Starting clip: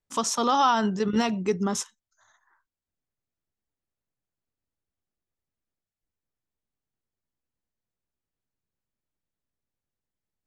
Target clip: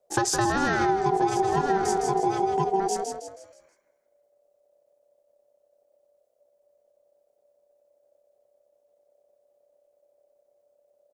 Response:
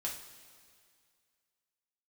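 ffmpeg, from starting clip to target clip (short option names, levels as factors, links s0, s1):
-filter_complex "[0:a]highshelf=f=2100:g=-10.5,asplit=2[s0][s1];[s1]aecho=0:1:968:0.473[s2];[s0][s2]amix=inputs=2:normalize=0,atempo=0.94,bass=f=250:g=14,treble=f=4000:g=12,asplit=2[s3][s4];[s4]asplit=5[s5][s6][s7][s8][s9];[s5]adelay=160,afreqshift=-33,volume=0.398[s10];[s6]adelay=320,afreqshift=-66,volume=0.164[s11];[s7]adelay=480,afreqshift=-99,volume=0.0668[s12];[s8]adelay=640,afreqshift=-132,volume=0.0275[s13];[s9]adelay=800,afreqshift=-165,volume=0.0112[s14];[s10][s11][s12][s13][s14]amix=inputs=5:normalize=0[s15];[s3][s15]amix=inputs=2:normalize=0,aeval=exprs='val(0)*sin(2*PI*580*n/s)':c=same,acompressor=threshold=0.0398:ratio=8,volume=2.51"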